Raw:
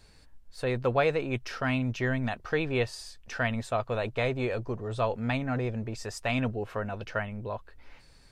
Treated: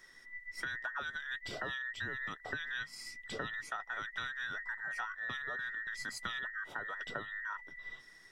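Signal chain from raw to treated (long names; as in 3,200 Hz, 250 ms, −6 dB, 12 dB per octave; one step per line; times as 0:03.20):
frequency inversion band by band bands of 2,000 Hz
downward compressor 12 to 1, threshold −34 dBFS, peak gain reduction 15 dB
level −2.5 dB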